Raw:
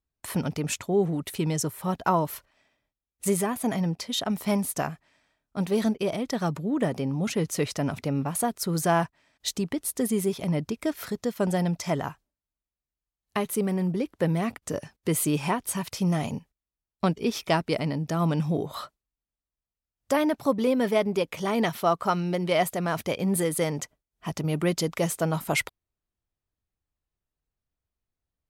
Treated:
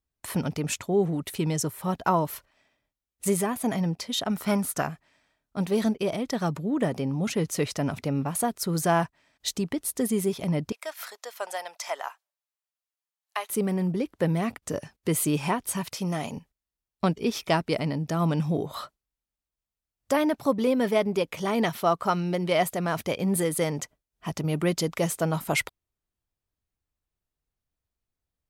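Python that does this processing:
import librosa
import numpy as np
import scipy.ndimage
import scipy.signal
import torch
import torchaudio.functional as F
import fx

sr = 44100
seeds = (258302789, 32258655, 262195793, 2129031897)

y = fx.peak_eq(x, sr, hz=1400.0, db=11.5, octaves=0.38, at=(4.31, 4.82))
y = fx.highpass(y, sr, hz=660.0, slope=24, at=(10.72, 13.5))
y = fx.highpass(y, sr, hz=270.0, slope=6, at=(15.93, 16.37))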